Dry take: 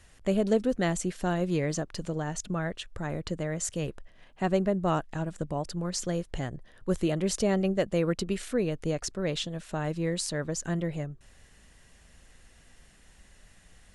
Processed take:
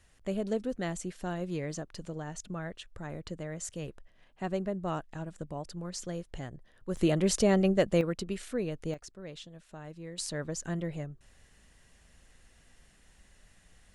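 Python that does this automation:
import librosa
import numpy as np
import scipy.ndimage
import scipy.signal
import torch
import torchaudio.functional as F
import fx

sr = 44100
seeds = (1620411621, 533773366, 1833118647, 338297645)

y = fx.gain(x, sr, db=fx.steps((0.0, -7.0), (6.97, 1.5), (8.01, -5.0), (8.94, -14.0), (10.18, -4.0)))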